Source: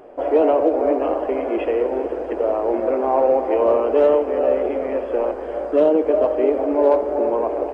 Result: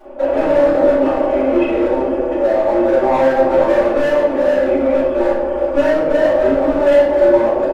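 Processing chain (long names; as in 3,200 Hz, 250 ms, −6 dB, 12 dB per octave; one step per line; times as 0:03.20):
comb filter 3.5 ms, depth 87%
in parallel at +0.5 dB: brickwall limiter −13 dBFS, peak gain reduction 11 dB
on the sum: flanger 0.59 Hz, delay 2.5 ms, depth 5.8 ms, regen −54%
hard clipping −13.5 dBFS, distortion −11 dB
rectangular room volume 180 cubic metres, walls mixed, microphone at 5.3 metres
level −13 dB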